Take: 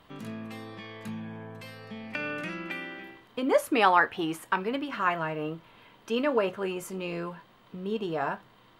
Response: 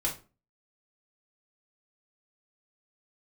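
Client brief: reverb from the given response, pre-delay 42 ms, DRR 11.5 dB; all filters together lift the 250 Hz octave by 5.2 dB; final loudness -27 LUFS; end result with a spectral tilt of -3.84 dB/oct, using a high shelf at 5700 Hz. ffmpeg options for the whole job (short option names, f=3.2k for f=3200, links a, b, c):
-filter_complex "[0:a]equalizer=f=250:t=o:g=6.5,highshelf=f=5.7k:g=7,asplit=2[a][b];[1:a]atrim=start_sample=2205,adelay=42[c];[b][c]afir=irnorm=-1:irlink=0,volume=-17dB[d];[a][d]amix=inputs=2:normalize=0,volume=1dB"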